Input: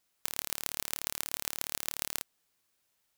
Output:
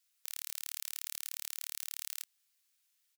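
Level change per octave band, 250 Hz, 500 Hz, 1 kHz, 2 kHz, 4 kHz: under -35 dB, under -25 dB, -15.5 dB, -8.5 dB, -5.5 dB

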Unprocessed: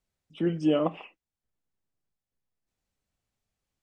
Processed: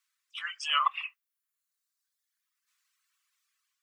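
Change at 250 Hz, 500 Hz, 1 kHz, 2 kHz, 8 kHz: under -40 dB, -31.0 dB, +8.5 dB, +11.5 dB, no reading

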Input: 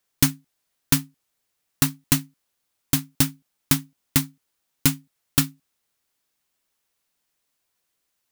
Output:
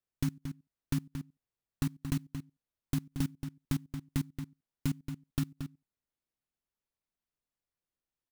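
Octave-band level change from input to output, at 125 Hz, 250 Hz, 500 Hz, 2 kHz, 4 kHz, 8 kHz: -7.0 dB, -8.5 dB, -12.0 dB, -17.5 dB, -20.5 dB, -23.0 dB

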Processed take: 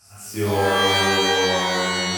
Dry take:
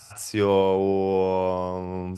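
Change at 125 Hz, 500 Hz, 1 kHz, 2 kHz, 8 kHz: +3.0 dB, -0.5 dB, +6.0 dB, +18.0 dB, no reading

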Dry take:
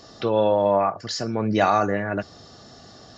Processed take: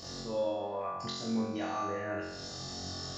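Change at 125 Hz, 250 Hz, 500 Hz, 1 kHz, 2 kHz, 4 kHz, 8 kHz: -12.5 dB, -9.5 dB, -14.0 dB, -14.5 dB, -12.5 dB, -5.5 dB, no reading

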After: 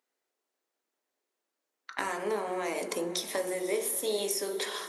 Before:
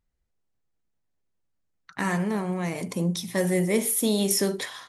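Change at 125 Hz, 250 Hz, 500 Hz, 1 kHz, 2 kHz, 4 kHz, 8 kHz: -23.5 dB, -13.5 dB, -3.5 dB, -1.5 dB, -4.5 dB, -3.0 dB, -6.0 dB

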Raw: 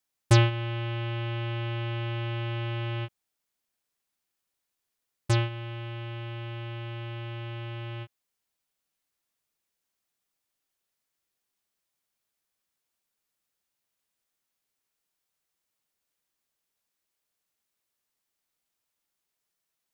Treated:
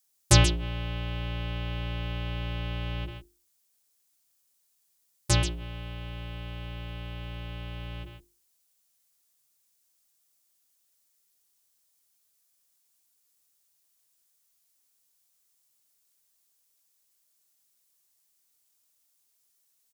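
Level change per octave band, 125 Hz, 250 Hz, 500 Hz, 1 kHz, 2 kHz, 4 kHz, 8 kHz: -2.0 dB, 0.0 dB, -2.5 dB, -1.0 dB, -0.5 dB, +4.0 dB, +12.0 dB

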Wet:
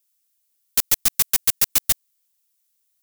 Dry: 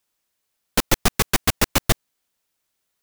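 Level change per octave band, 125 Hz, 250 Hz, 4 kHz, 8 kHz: -16.5 dB, -16.0 dB, -2.0 dB, +3.5 dB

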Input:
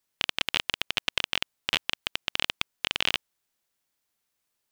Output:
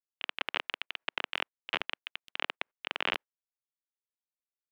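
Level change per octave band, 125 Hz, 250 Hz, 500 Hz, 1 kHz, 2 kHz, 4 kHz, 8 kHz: -13.0 dB, -6.5 dB, -1.5 dB, -1.0 dB, -4.5 dB, -9.5 dB, under -20 dB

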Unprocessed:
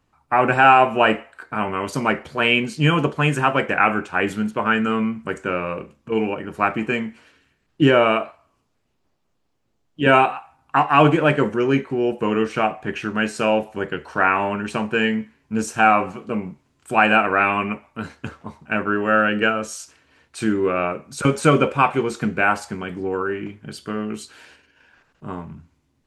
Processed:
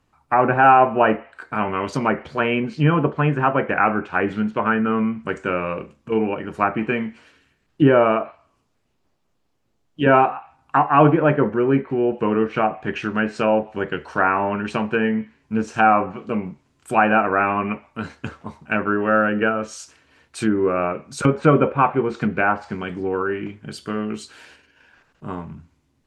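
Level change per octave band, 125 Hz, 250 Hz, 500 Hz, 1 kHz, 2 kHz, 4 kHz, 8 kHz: +1.0 dB, +1.0 dB, +1.0 dB, 0.0 dB, -2.5 dB, -8.0 dB, no reading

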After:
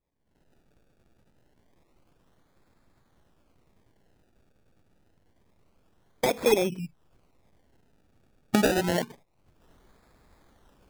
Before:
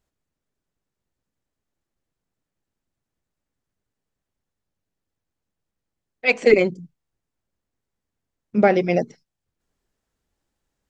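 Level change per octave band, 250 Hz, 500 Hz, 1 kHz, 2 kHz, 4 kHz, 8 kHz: -5.0 dB, -7.5 dB, -5.5 dB, -9.0 dB, +1.5 dB, no reading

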